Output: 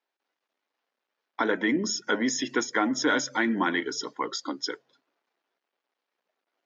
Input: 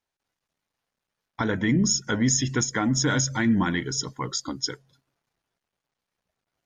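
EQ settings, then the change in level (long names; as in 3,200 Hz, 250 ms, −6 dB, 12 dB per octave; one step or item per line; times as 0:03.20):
high-pass filter 290 Hz 24 dB per octave
high-frequency loss of the air 200 metres
high-shelf EQ 5,300 Hz +6 dB
+3.0 dB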